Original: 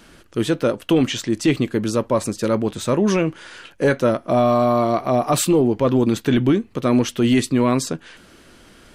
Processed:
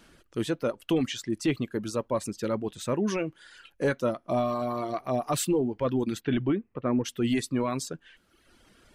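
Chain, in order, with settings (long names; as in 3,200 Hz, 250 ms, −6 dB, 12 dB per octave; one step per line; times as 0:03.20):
reverb reduction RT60 1.1 s
0:06.20–0:07.04: low-pass filter 4,200 Hz → 1,700 Hz 24 dB per octave
level −8.5 dB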